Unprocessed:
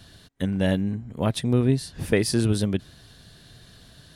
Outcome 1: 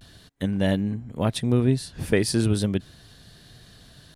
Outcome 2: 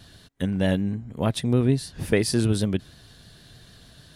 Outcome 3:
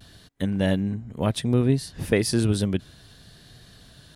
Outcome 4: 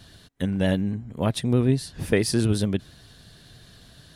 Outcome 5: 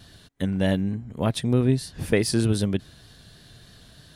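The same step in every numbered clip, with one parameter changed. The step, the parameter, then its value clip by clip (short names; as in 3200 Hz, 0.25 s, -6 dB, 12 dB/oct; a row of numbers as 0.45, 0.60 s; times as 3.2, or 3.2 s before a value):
vibrato, rate: 0.36, 6.5, 0.64, 11, 3.3 Hz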